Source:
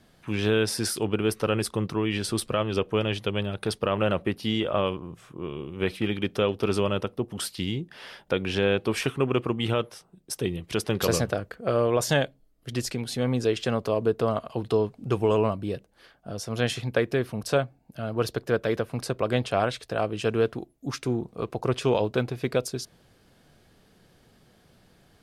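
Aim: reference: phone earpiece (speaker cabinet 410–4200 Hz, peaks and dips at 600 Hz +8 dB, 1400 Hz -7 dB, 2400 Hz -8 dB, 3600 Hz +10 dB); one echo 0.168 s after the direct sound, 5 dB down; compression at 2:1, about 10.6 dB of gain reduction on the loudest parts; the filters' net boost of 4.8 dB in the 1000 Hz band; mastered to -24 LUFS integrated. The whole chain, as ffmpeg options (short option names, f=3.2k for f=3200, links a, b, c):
-af "equalizer=f=1k:t=o:g=7,acompressor=threshold=-37dB:ratio=2,highpass=410,equalizer=f=600:t=q:w=4:g=8,equalizer=f=1.4k:t=q:w=4:g=-7,equalizer=f=2.4k:t=q:w=4:g=-8,equalizer=f=3.6k:t=q:w=4:g=10,lowpass=f=4.2k:w=0.5412,lowpass=f=4.2k:w=1.3066,aecho=1:1:168:0.562,volume=10.5dB"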